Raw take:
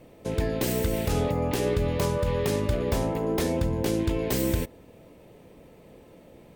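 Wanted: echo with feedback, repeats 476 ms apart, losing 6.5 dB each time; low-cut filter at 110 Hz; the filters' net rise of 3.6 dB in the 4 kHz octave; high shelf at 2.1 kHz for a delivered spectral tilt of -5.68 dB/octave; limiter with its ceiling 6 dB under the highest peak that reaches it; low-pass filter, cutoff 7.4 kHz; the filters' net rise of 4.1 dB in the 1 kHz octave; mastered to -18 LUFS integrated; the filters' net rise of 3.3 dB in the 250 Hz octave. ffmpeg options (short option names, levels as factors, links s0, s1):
-af "highpass=110,lowpass=7400,equalizer=f=250:t=o:g=4.5,equalizer=f=1000:t=o:g=5,highshelf=f=2100:g=-3,equalizer=f=4000:t=o:g=7.5,alimiter=limit=0.141:level=0:latency=1,aecho=1:1:476|952|1428|1904|2380|2856:0.473|0.222|0.105|0.0491|0.0231|0.0109,volume=2.51"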